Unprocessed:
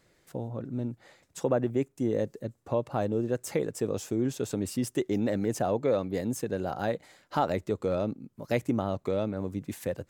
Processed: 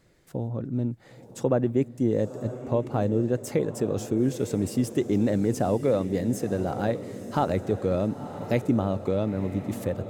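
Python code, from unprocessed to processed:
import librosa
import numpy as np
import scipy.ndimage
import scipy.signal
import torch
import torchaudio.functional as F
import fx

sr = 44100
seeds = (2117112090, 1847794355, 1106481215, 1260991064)

y = fx.low_shelf(x, sr, hz=370.0, db=7.0)
y = fx.echo_diffused(y, sr, ms=970, feedback_pct=49, wet_db=-12.0)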